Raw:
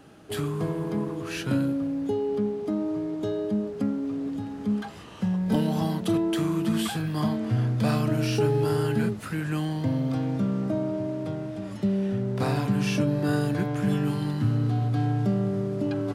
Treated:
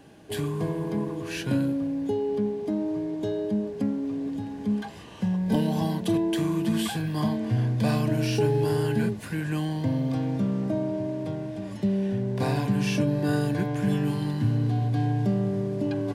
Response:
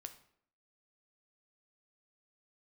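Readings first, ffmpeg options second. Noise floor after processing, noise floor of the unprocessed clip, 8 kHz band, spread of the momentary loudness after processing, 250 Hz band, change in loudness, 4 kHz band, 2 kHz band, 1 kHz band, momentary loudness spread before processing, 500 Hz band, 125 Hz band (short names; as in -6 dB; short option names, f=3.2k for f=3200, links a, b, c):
-38 dBFS, -37 dBFS, 0.0 dB, 6 LU, 0.0 dB, 0.0 dB, 0.0 dB, -0.5 dB, -0.5 dB, 6 LU, 0.0 dB, 0.0 dB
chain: -af "asuperstop=centerf=1300:order=4:qfactor=5.7"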